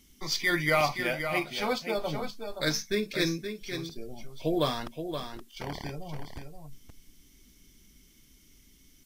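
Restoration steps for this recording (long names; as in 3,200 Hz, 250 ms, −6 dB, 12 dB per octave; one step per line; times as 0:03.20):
downward expander −50 dBFS, range −21 dB
echo removal 523 ms −8 dB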